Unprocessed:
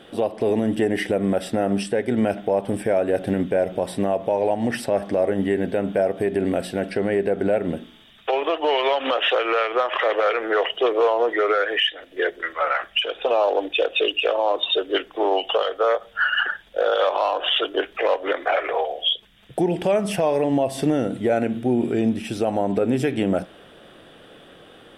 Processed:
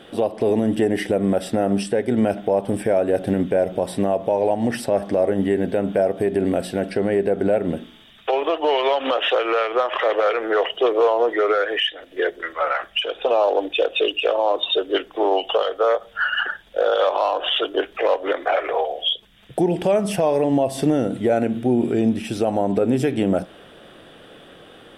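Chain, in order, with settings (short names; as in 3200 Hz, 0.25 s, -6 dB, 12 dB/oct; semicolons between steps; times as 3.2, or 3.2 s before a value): dynamic EQ 2100 Hz, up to -4 dB, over -36 dBFS, Q 0.91; gain +2 dB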